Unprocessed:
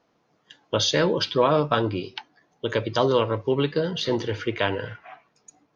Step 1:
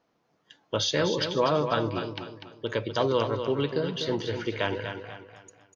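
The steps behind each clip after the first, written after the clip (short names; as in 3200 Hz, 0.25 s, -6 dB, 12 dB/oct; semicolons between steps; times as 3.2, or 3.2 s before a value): feedback echo 0.246 s, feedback 37%, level -8 dB; gain -4.5 dB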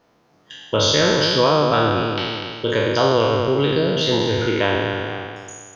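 spectral trails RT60 1.71 s; low shelf 100 Hz +5 dB; in parallel at +1.5 dB: compressor, threshold -30 dBFS, peak gain reduction 13 dB; on the sum: gain +2.5 dB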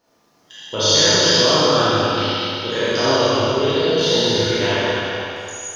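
tone controls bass -2 dB, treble +10 dB; Schroeder reverb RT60 2 s, combs from 26 ms, DRR -8 dB; gain -8 dB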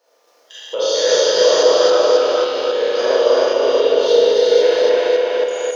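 regenerating reverse delay 0.272 s, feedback 47%, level 0 dB; resonant high-pass 500 Hz, resonance Q 4.9; mismatched tape noise reduction encoder only; gain -8 dB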